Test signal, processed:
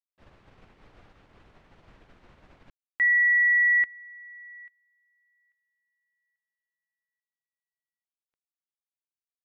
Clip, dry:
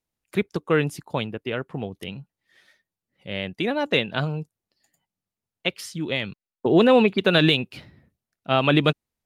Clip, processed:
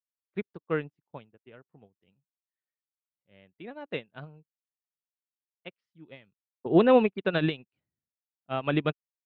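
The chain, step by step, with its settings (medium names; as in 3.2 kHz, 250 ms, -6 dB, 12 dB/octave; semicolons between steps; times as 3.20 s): low-pass 2.4 kHz 12 dB/octave; upward expansion 2.5:1, over -39 dBFS; trim -1.5 dB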